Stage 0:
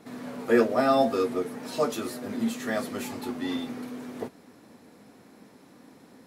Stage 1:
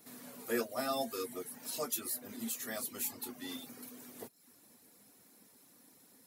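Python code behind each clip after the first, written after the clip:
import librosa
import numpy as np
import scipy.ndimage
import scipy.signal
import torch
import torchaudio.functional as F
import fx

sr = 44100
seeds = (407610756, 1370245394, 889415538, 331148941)

y = scipy.signal.lfilter([1.0, -0.8], [1.0], x)
y = fx.dereverb_blind(y, sr, rt60_s=0.55)
y = fx.high_shelf(y, sr, hz=11000.0, db=12.0)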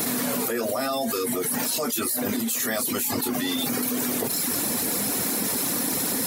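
y = fx.env_flatten(x, sr, amount_pct=100)
y = F.gain(torch.from_numpy(y), 4.5).numpy()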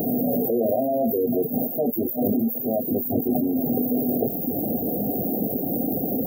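y = fx.brickwall_bandstop(x, sr, low_hz=790.0, high_hz=14000.0)
y = F.gain(torch.from_numpy(y), 5.5).numpy()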